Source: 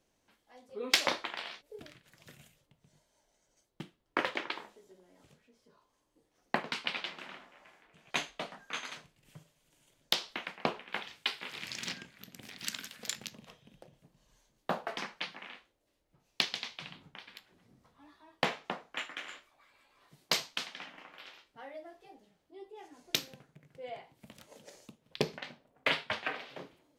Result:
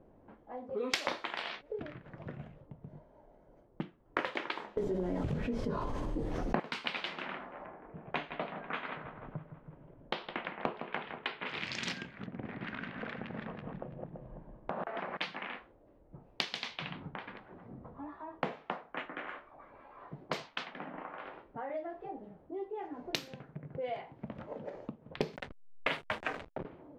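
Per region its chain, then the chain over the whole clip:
4.77–6.6 tilt -3.5 dB/oct + fast leveller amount 70%
7.66–11.46 air absorption 380 m + feedback echo 0.162 s, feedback 58%, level -13 dB
12.26–15.17 regenerating reverse delay 0.167 s, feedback 46%, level -3.5 dB + LPF 2400 Hz + compressor 2.5:1, threshold -44 dBFS
17.32–21.7 high shelf 2500 Hz -9 dB + harmonic tremolo 1.7 Hz, depth 50%, crossover 620 Hz + mismatched tape noise reduction encoder only
25.36–26.65 high shelf 9400 Hz -10 dB + backlash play -37.5 dBFS
whole clip: low-pass opened by the level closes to 760 Hz, open at -34.5 dBFS; high shelf 4100 Hz -10.5 dB; compressor 2.5:1, threshold -59 dBFS; gain +18 dB

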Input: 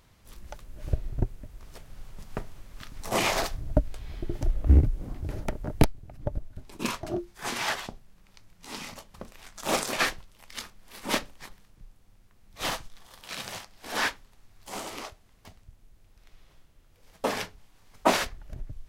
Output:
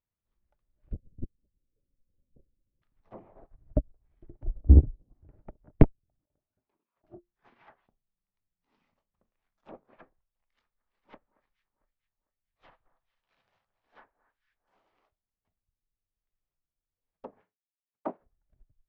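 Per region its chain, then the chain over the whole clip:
0.92–2.82 steep low-pass 570 Hz 96 dB/oct + LPC vocoder at 8 kHz whisper + Doppler distortion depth 0.81 ms
6.19–7.04 HPF 610 Hz 6 dB/oct + high shelf 2400 Hz -11.5 dB + negative-ratio compressor -51 dBFS
10.13–15.03 bell 220 Hz -6.5 dB 1.6 oct + echo with dull and thin repeats by turns 0.225 s, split 1600 Hz, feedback 61%, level -9.5 dB
17.41–18.2 HPF 180 Hz + expander -54 dBFS
whole clip: Bessel low-pass 2000 Hz, order 2; treble ducked by the level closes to 620 Hz, closed at -25 dBFS; upward expander 2.5:1, over -38 dBFS; gain +4 dB

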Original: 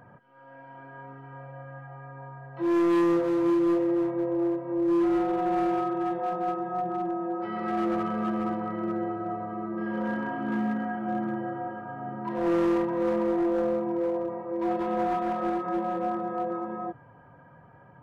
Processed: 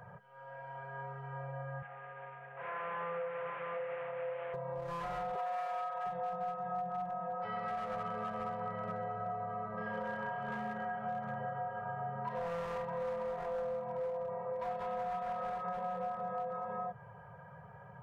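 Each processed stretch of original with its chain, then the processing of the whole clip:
1.82–4.54 CVSD 16 kbps + speaker cabinet 330–2100 Hz, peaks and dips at 360 Hz -7 dB, 660 Hz -4 dB, 960 Hz -6 dB
5.35–6.06 HPF 520 Hz + comb 7.3 ms, depth 89%
whole clip: Chebyshev band-stop 200–410 Hz, order 4; compressor 5:1, threshold -37 dBFS; gain +1 dB

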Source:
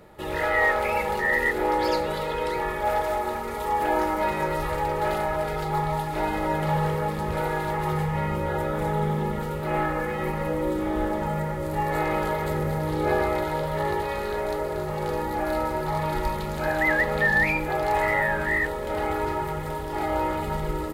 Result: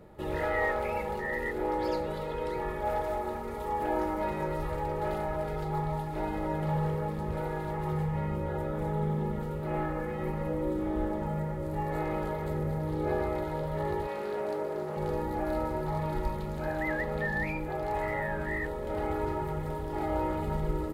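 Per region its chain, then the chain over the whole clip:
14.07–14.97 HPF 220 Hz + Doppler distortion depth 0.15 ms
whole clip: tilt shelf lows +5 dB, about 780 Hz; vocal rider 2 s; gain -8 dB

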